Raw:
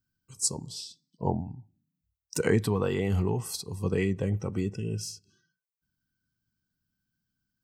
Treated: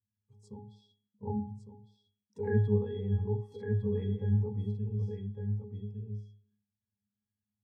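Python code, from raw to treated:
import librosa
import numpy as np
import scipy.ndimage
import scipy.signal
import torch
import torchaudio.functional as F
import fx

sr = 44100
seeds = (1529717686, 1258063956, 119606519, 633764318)

y = fx.octave_resonator(x, sr, note='G#', decay_s=0.39)
y = y + 10.0 ** (-6.0 / 20.0) * np.pad(y, (int(1156 * sr / 1000.0), 0))[:len(y)]
y = y * 10.0 ** (6.5 / 20.0)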